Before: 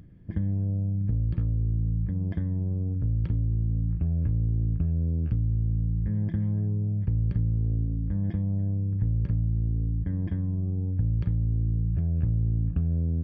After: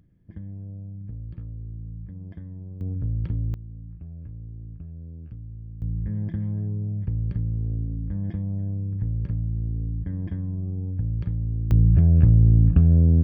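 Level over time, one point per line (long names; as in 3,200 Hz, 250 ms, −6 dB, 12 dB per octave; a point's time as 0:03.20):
−10 dB
from 0:02.81 −0.5 dB
from 0:03.54 −13 dB
from 0:05.82 −1 dB
from 0:11.71 +10 dB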